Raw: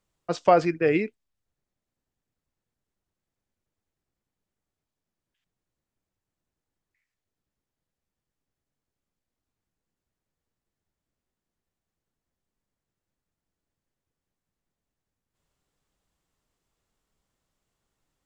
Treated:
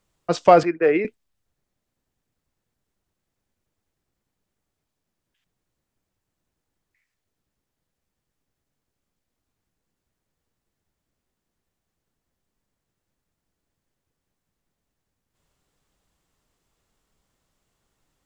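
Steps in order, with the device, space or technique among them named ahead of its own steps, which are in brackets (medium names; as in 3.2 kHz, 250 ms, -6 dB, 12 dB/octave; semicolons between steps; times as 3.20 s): 0.63–1.05 s: three-band isolator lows -15 dB, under 310 Hz, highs -16 dB, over 2.3 kHz; parallel distortion (in parallel at -13.5 dB: hard clipper -19 dBFS, distortion -7 dB); on the sum: trim +4.5 dB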